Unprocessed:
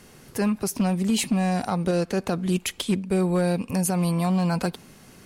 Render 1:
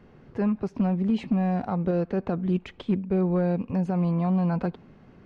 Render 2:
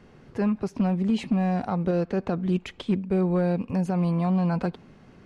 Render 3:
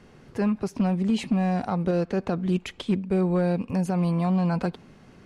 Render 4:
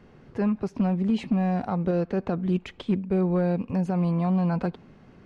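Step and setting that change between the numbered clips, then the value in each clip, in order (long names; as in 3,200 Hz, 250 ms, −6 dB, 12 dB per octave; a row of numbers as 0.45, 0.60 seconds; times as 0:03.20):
head-to-tape spacing loss, at 10 kHz: 45, 29, 21, 37 decibels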